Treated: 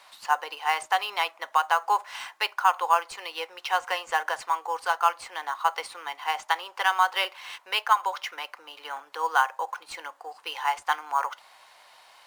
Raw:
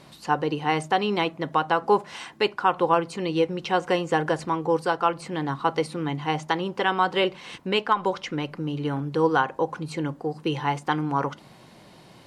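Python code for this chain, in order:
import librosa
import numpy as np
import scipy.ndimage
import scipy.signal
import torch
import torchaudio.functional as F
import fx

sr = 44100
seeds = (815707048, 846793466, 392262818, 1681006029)

p1 = scipy.signal.sosfilt(scipy.signal.butter(4, 790.0, 'highpass', fs=sr, output='sos'), x)
p2 = fx.sample_hold(p1, sr, seeds[0], rate_hz=7700.0, jitter_pct=0)
y = p1 + F.gain(torch.from_numpy(p2), -11.0).numpy()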